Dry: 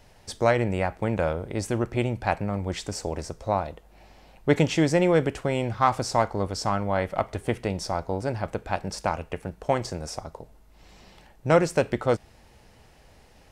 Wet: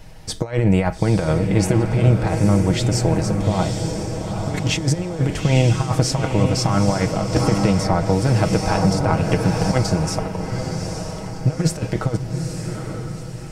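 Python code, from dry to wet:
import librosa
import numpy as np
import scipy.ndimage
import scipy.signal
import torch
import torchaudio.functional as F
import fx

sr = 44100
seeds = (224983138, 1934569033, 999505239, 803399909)

y = fx.over_compress(x, sr, threshold_db=-26.0, ratio=-0.5)
y = fx.bass_treble(y, sr, bass_db=8, treble_db=1)
y = y + 0.53 * np.pad(y, (int(6.3 * sr / 1000.0), 0))[:len(y)]
y = fx.echo_diffused(y, sr, ms=869, feedback_pct=45, wet_db=-5)
y = fx.band_squash(y, sr, depth_pct=100, at=(7.36, 9.72))
y = y * 10.0 ** (4.0 / 20.0)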